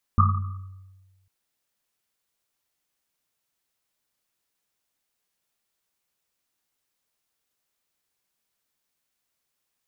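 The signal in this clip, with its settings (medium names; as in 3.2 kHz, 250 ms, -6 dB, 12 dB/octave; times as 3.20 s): Risset drum, pitch 95 Hz, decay 1.37 s, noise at 1.2 kHz, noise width 140 Hz, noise 35%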